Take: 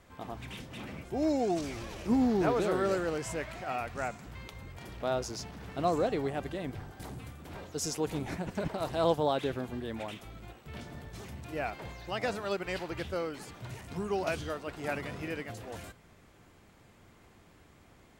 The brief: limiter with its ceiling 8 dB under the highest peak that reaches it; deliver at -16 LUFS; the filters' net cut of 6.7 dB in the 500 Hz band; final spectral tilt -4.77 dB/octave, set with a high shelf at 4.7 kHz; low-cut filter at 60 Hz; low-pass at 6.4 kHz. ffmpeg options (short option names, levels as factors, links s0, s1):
-af "highpass=60,lowpass=6400,equalizer=f=500:t=o:g=-9,highshelf=f=4700:g=4,volume=14.1,alimiter=limit=0.708:level=0:latency=1"